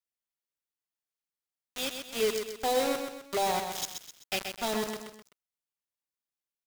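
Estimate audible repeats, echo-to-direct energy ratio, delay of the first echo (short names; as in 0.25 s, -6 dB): 3, -5.5 dB, 0.128 s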